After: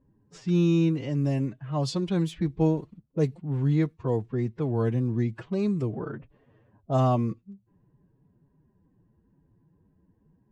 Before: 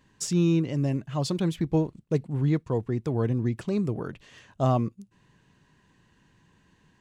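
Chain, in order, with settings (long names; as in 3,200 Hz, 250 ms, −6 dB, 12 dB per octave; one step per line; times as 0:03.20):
phase-vocoder stretch with locked phases 1.5×
low-pass that shuts in the quiet parts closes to 490 Hz, open at −22 dBFS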